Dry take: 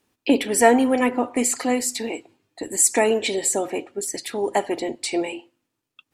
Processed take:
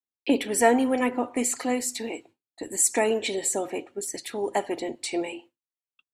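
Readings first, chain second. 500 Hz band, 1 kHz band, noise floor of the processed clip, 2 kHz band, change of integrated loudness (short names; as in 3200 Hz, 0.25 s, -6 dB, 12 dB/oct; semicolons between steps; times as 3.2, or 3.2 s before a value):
-4.5 dB, -4.5 dB, under -85 dBFS, -4.5 dB, -4.5 dB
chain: expander -41 dBFS; notch 4900 Hz, Q 18; gain -4.5 dB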